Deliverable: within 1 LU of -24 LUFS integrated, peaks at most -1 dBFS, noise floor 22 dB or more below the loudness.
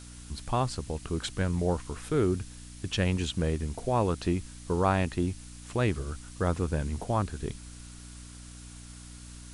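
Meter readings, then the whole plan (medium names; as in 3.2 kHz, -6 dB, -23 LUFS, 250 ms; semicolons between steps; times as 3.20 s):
hum 60 Hz; highest harmonic 300 Hz; hum level -45 dBFS; noise floor -46 dBFS; noise floor target -53 dBFS; loudness -30.5 LUFS; peak level -12.5 dBFS; loudness target -24.0 LUFS
-> de-hum 60 Hz, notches 5; noise print and reduce 7 dB; trim +6.5 dB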